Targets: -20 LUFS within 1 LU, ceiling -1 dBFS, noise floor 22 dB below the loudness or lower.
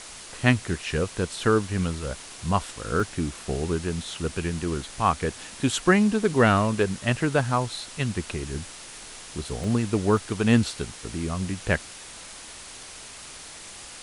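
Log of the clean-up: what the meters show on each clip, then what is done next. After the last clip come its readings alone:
dropouts 3; longest dropout 1.2 ms; noise floor -43 dBFS; noise floor target -48 dBFS; loudness -25.5 LUFS; peak -2.5 dBFS; loudness target -20.0 LUFS
-> interpolate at 3/9.64/10.17, 1.2 ms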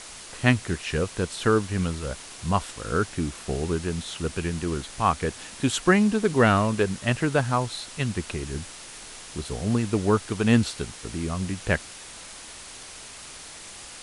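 dropouts 0; noise floor -43 dBFS; noise floor target -48 dBFS
-> denoiser 6 dB, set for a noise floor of -43 dBFS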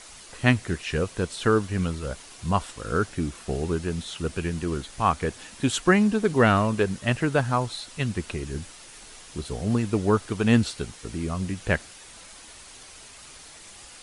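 noise floor -47 dBFS; noise floor target -48 dBFS
-> denoiser 6 dB, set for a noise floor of -47 dBFS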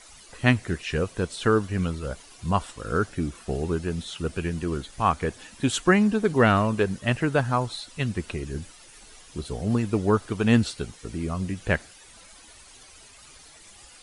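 noise floor -50 dBFS; loudness -26.0 LUFS; peak -2.5 dBFS; loudness target -20.0 LUFS
-> gain +6 dB; limiter -1 dBFS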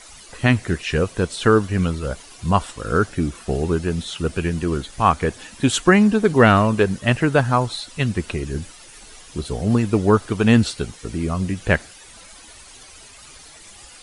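loudness -20.0 LUFS; peak -1.0 dBFS; noise floor -44 dBFS

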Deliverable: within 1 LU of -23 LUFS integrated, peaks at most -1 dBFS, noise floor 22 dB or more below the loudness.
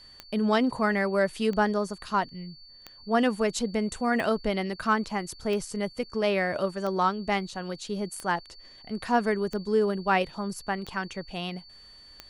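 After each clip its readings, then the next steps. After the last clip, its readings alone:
clicks 10; steady tone 4500 Hz; tone level -49 dBFS; loudness -28.0 LUFS; peak -11.0 dBFS; loudness target -23.0 LUFS
-> de-click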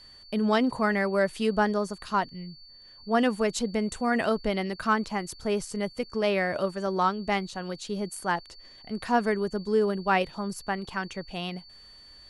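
clicks 0; steady tone 4500 Hz; tone level -49 dBFS
-> notch 4500 Hz, Q 30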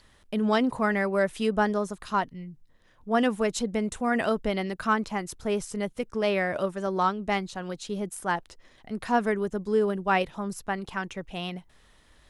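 steady tone none; loudness -28.0 LUFS; peak -11.0 dBFS; loudness target -23.0 LUFS
-> gain +5 dB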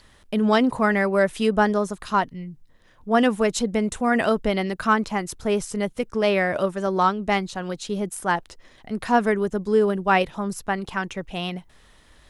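loudness -23.0 LUFS; peak -6.0 dBFS; noise floor -54 dBFS

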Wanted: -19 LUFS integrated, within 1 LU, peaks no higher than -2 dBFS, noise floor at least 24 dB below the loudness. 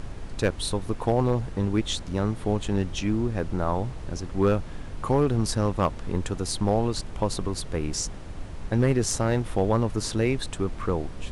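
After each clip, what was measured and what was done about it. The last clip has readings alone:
clipped 0.3%; flat tops at -13.5 dBFS; noise floor -38 dBFS; noise floor target -51 dBFS; loudness -27.0 LUFS; peak -13.5 dBFS; loudness target -19.0 LUFS
-> clip repair -13.5 dBFS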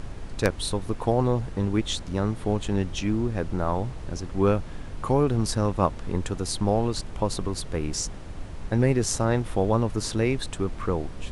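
clipped 0.0%; noise floor -38 dBFS; noise floor target -51 dBFS
-> noise print and reduce 13 dB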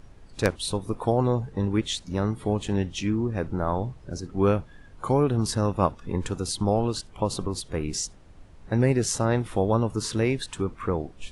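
noise floor -49 dBFS; noise floor target -51 dBFS
-> noise print and reduce 6 dB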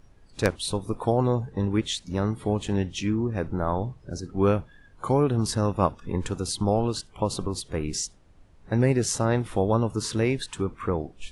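noise floor -54 dBFS; loudness -26.5 LUFS; peak -4.5 dBFS; loudness target -19.0 LUFS
-> gain +7.5 dB; limiter -2 dBFS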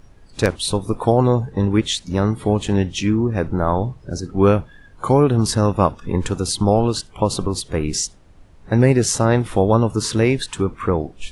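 loudness -19.5 LUFS; peak -2.0 dBFS; noise floor -47 dBFS

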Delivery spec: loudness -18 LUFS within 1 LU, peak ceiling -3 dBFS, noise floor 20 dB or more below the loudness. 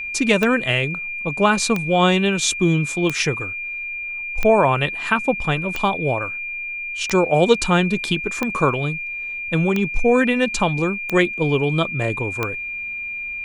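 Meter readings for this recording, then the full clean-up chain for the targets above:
clicks 10; steady tone 2400 Hz; tone level -26 dBFS; loudness -20.0 LUFS; peak -1.5 dBFS; loudness target -18.0 LUFS
-> de-click; notch 2400 Hz, Q 30; gain +2 dB; limiter -3 dBFS

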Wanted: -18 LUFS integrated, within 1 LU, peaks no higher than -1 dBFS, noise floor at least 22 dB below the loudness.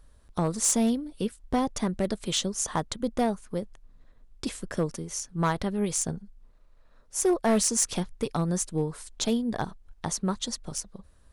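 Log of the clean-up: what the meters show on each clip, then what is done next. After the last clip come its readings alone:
clipped 0.5%; flat tops at -17.5 dBFS; loudness -28.5 LUFS; peak -17.5 dBFS; loudness target -18.0 LUFS
-> clip repair -17.5 dBFS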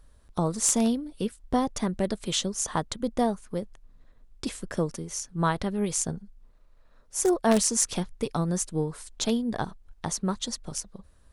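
clipped 0.0%; loudness -28.5 LUFS; peak -8.5 dBFS; loudness target -18.0 LUFS
-> gain +10.5 dB; limiter -1 dBFS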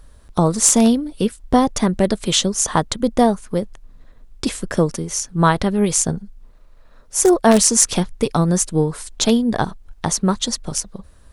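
loudness -18.0 LUFS; peak -1.0 dBFS; noise floor -46 dBFS

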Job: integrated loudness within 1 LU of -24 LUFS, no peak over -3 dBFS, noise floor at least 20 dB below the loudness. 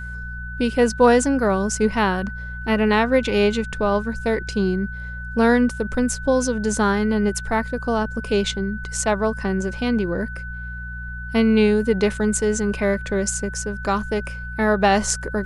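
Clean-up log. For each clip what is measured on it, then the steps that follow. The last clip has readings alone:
hum 60 Hz; harmonics up to 180 Hz; hum level -31 dBFS; steady tone 1500 Hz; tone level -33 dBFS; loudness -21.0 LUFS; peak -3.0 dBFS; loudness target -24.0 LUFS
-> de-hum 60 Hz, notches 3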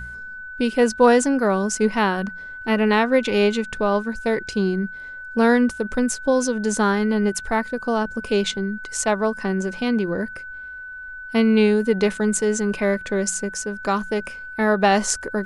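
hum none; steady tone 1500 Hz; tone level -33 dBFS
-> notch 1500 Hz, Q 30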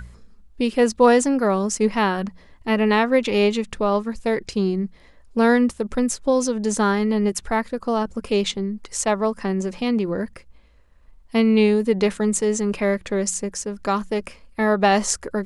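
steady tone none; loudness -21.0 LUFS; peak -2.5 dBFS; loudness target -24.0 LUFS
-> gain -3 dB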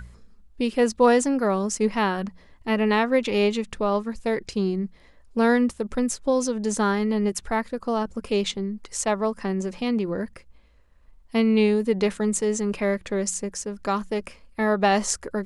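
loudness -24.0 LUFS; peak -5.5 dBFS; noise floor -54 dBFS

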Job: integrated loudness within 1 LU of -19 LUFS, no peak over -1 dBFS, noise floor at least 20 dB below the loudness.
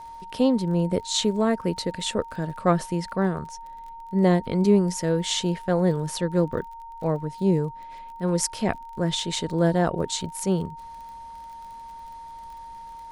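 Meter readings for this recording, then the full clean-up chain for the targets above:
ticks 31/s; steady tone 920 Hz; tone level -38 dBFS; loudness -25.0 LUFS; peak -7.5 dBFS; loudness target -19.0 LUFS
-> de-click; notch 920 Hz, Q 30; gain +6 dB

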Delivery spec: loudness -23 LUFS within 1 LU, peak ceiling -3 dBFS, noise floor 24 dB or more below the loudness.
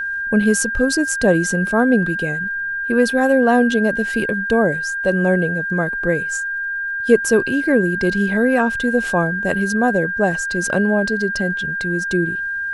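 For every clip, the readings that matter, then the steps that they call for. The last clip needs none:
ticks 46/s; steady tone 1600 Hz; tone level -21 dBFS; loudness -18.0 LUFS; peak -1.0 dBFS; loudness target -23.0 LUFS
-> de-click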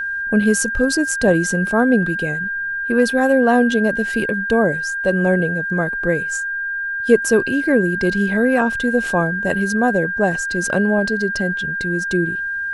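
ticks 0.079/s; steady tone 1600 Hz; tone level -21 dBFS
-> notch 1600 Hz, Q 30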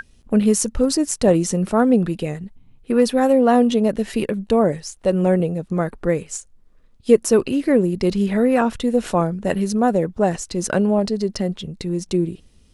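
steady tone none; loudness -19.5 LUFS; peak -1.5 dBFS; loudness target -23.0 LUFS
-> gain -3.5 dB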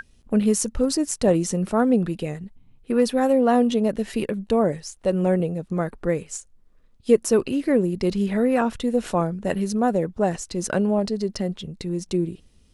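loudness -23.0 LUFS; peak -5.0 dBFS; noise floor -57 dBFS

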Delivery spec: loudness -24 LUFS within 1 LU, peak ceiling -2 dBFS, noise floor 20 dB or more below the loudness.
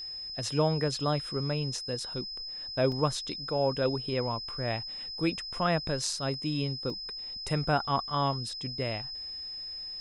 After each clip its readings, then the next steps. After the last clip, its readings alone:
dropouts 2; longest dropout 2.2 ms; steady tone 5100 Hz; tone level -37 dBFS; loudness -31.0 LUFS; peak -13.5 dBFS; loudness target -24.0 LUFS
-> interpolate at 2.92/6.9, 2.2 ms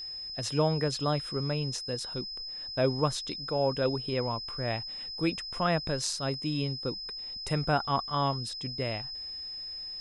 dropouts 0; steady tone 5100 Hz; tone level -37 dBFS
-> notch 5100 Hz, Q 30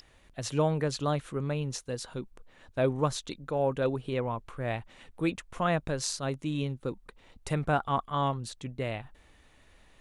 steady tone none; loudness -32.0 LUFS; peak -14.0 dBFS; loudness target -24.0 LUFS
-> gain +8 dB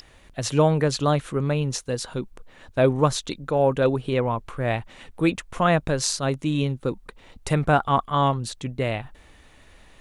loudness -24.0 LUFS; peak -6.0 dBFS; noise floor -53 dBFS

